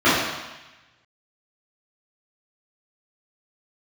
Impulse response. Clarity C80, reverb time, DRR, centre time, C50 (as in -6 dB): 2.5 dB, 1.1 s, -14.5 dB, 81 ms, -0.5 dB